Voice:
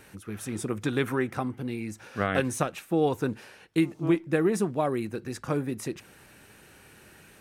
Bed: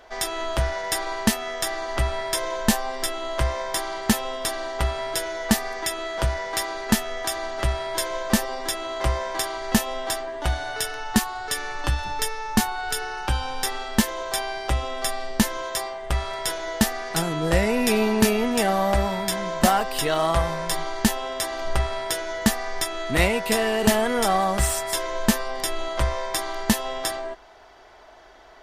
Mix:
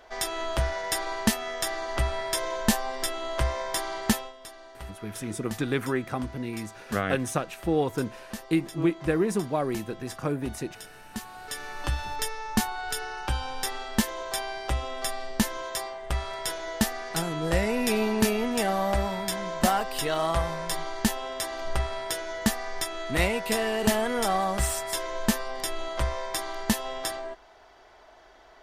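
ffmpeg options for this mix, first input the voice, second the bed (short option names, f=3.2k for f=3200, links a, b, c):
-filter_complex "[0:a]adelay=4750,volume=-0.5dB[a];[1:a]volume=10dB,afade=t=out:st=4.09:d=0.24:silence=0.188365,afade=t=in:st=11.13:d=0.82:silence=0.223872[b];[a][b]amix=inputs=2:normalize=0"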